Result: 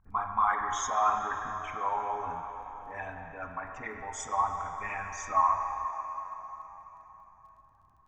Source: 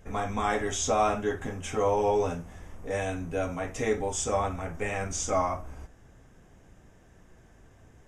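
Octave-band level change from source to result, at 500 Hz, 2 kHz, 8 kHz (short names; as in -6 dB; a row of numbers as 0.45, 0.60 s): -14.0, -1.5, -8.0 dB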